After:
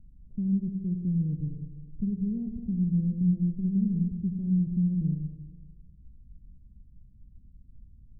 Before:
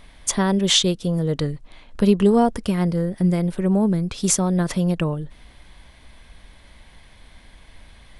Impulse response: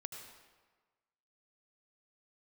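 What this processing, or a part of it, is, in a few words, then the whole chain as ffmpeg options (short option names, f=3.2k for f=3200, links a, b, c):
club heard from the street: -filter_complex "[0:a]alimiter=limit=-12.5dB:level=0:latency=1:release=215,lowpass=f=210:w=0.5412,lowpass=f=210:w=1.3066[a];[1:a]atrim=start_sample=2205[b];[a][b]afir=irnorm=-1:irlink=0"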